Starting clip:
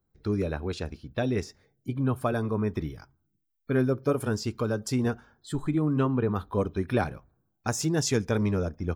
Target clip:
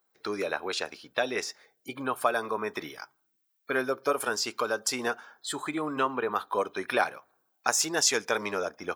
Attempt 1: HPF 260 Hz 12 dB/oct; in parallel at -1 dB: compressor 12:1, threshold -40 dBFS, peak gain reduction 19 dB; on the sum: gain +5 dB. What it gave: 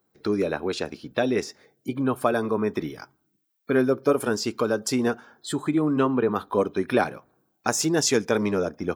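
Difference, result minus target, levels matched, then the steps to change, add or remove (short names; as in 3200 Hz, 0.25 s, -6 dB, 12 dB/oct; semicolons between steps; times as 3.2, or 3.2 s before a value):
250 Hz band +8.0 dB
change: HPF 740 Hz 12 dB/oct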